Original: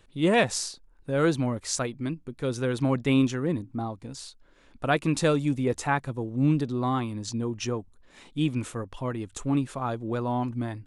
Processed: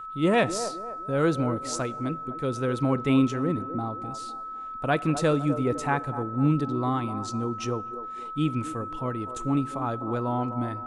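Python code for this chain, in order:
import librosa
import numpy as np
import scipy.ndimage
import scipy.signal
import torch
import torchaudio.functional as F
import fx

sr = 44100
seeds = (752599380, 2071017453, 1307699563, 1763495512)

y = fx.high_shelf(x, sr, hz=6900.0, db=6.0)
y = y + 10.0 ** (-35.0 / 20.0) * np.sin(2.0 * np.pi * 1300.0 * np.arange(len(y)) / sr)
y = fx.high_shelf(y, sr, hz=3300.0, db=-8.5)
y = fx.echo_wet_bandpass(y, sr, ms=252, feedback_pct=40, hz=560.0, wet_db=-9.5)
y = fx.rev_plate(y, sr, seeds[0], rt60_s=1.3, hf_ratio=0.65, predelay_ms=0, drr_db=19.5)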